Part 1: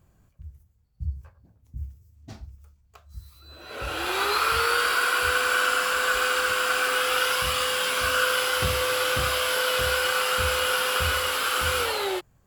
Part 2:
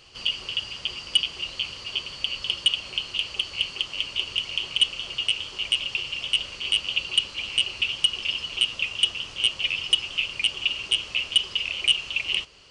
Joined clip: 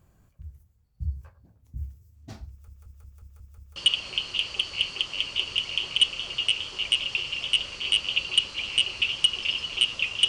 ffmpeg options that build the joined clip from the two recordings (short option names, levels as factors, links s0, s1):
-filter_complex "[0:a]apad=whole_dur=10.28,atrim=end=10.28,asplit=7[s0][s1][s2][s3][s4][s5][s6];[s0]atrim=end=2.682[s7];[s1]atrim=start=2.498:end=2.682[s8];[s2]atrim=start=2.498:end=2.682[s9];[s3]atrim=start=2.498:end=2.682[s10];[s4]atrim=start=2.498:end=2.682[s11];[s5]atrim=start=2.498:end=2.682[s12];[s6]atrim=start=2.498:end=2.682[s13];[1:a]atrim=start=2.558:end=9.08[s14];[s7][s8]acrossfade=d=0.004:c1=hsin:c2=hsin[s15];[s15][s9]acrossfade=d=0.004:c1=hsin:c2=hsin[s16];[s16][s10]acrossfade=d=0.004:c1=hsin:c2=hsin[s17];[s17][s11]acrossfade=d=0.004:c1=hsin:c2=hsin[s18];[s18][s12]acrossfade=d=0.004:c1=hsin:c2=hsin[s19];[s19][s13]acrossfade=d=0.004:c1=hsin:c2=hsin[s20];[s20][s14]acrossfade=d=0.004:c1=hsin:c2=hsin"